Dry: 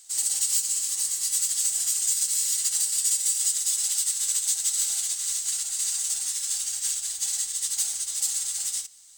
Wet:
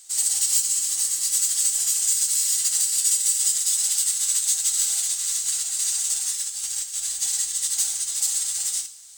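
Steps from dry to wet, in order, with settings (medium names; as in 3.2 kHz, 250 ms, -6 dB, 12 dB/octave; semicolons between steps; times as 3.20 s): 6.35–6.96 s: compressor with a negative ratio -32 dBFS, ratio -0.5; two-slope reverb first 0.41 s, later 4.5 s, from -22 dB, DRR 8 dB; trim +2.5 dB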